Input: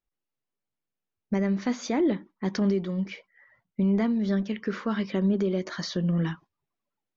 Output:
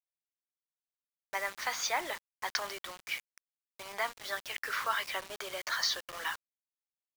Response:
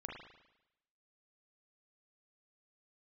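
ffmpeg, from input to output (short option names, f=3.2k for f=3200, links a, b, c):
-af "highpass=f=810:w=0.5412,highpass=f=810:w=1.3066,acrusher=bits=7:mix=0:aa=0.000001,volume=5dB"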